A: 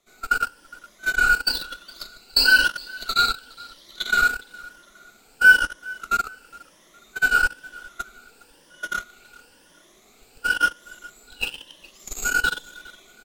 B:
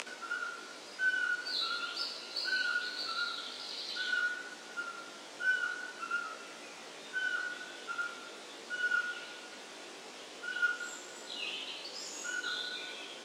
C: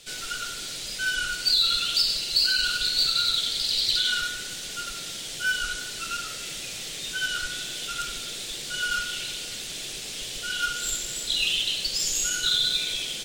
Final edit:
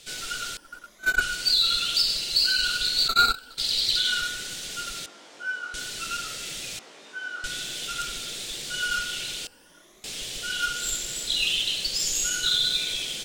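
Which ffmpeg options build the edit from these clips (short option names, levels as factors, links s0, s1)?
-filter_complex "[0:a]asplit=3[s0][s1][s2];[1:a]asplit=2[s3][s4];[2:a]asplit=6[s5][s6][s7][s8][s9][s10];[s5]atrim=end=0.572[s11];[s0]atrim=start=0.568:end=1.212[s12];[s6]atrim=start=1.208:end=3.082[s13];[s1]atrim=start=3.078:end=3.582[s14];[s7]atrim=start=3.578:end=5.062[s15];[s3]atrim=start=5.058:end=5.742[s16];[s8]atrim=start=5.738:end=6.792[s17];[s4]atrim=start=6.788:end=7.442[s18];[s9]atrim=start=7.438:end=9.472[s19];[s2]atrim=start=9.468:end=10.042[s20];[s10]atrim=start=10.038[s21];[s11][s12]acrossfade=d=0.004:c1=hsin:c2=hsin[s22];[s22][s13]acrossfade=d=0.004:c1=hsin:c2=hsin[s23];[s23][s14]acrossfade=d=0.004:c1=hsin:c2=hsin[s24];[s24][s15]acrossfade=d=0.004:c1=hsin:c2=hsin[s25];[s25][s16]acrossfade=d=0.004:c1=hsin:c2=hsin[s26];[s26][s17]acrossfade=d=0.004:c1=hsin:c2=hsin[s27];[s27][s18]acrossfade=d=0.004:c1=hsin:c2=hsin[s28];[s28][s19]acrossfade=d=0.004:c1=hsin:c2=hsin[s29];[s29][s20]acrossfade=d=0.004:c1=hsin:c2=hsin[s30];[s30][s21]acrossfade=d=0.004:c1=hsin:c2=hsin"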